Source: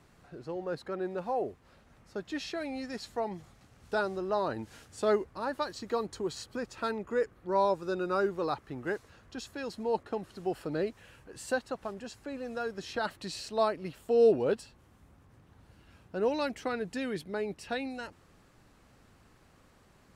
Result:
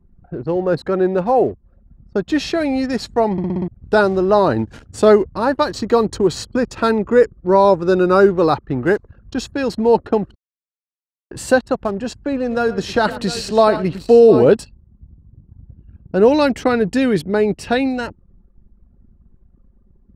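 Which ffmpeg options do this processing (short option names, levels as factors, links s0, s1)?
-filter_complex "[0:a]asettb=1/sr,asplit=3[s0][s1][s2];[s0]atrim=end=12.384[s3];[s1]atrim=start=12.38:end=14.49,asetpts=PTS-STARTPTS,afade=t=in:d=0.004:c=qsin,afade=t=out:st=2.106:d=0.004:c=qsin,aecho=1:1:112|708:0.178|0.237,atrim=end_sample=93051[s4];[s2]atrim=start=14.486[s5];[s3][s4]acrossfade=d=0.004:c1=hsin:c2=qsin[s6];[s6][s5]acrossfade=d=0.004:c1=qsin:c2=hsin,asplit=9[s7][s8][s9][s10][s11][s12][s13][s14][s15];[s7]atrim=end=3.382[s16];[s8]atrim=start=3.318:end=3.382[s17];[s9]atrim=start=3.318:end=3.382[s18];[s10]atrim=start=3.318:end=3.382[s19];[s11]atrim=start=3.318:end=3.382[s20];[s12]atrim=start=3.318:end=3.382[s21];[s13]atrim=start=3.678:end=10.35,asetpts=PTS-STARTPTS,afade=t=out:st=6.668:d=0.004:c=hsin[s22];[s14]atrim=start=10.35:end=11.31,asetpts=PTS-STARTPTS,volume=0[s23];[s15]atrim=start=11.31,asetpts=PTS-STARTPTS,afade=t=in:d=0.004:c=hsin[s24];[s16][s17]acrossfade=d=0.004:c1=hsin:c2=hsin[s25];[s25][s18]acrossfade=d=0.004:c1=hsin:c2=hsin[s26];[s26][s19]acrossfade=d=0.004:c1=hsin:c2=hsin[s27];[s27][s20]acrossfade=d=0.004:c1=hsin:c2=hsin[s28];[s28][s21]acrossfade=d=0.004:c1=hsin:c2=hsin[s29];[s22][s23][s24]concat=n=3:v=0:a=1[s30];[s29][s30]acrossfade=d=0.004:c1=hsin:c2=hsin,anlmdn=0.00398,lowshelf=f=500:g=7,alimiter=level_in=5.62:limit=0.891:release=50:level=0:latency=1,volume=0.891"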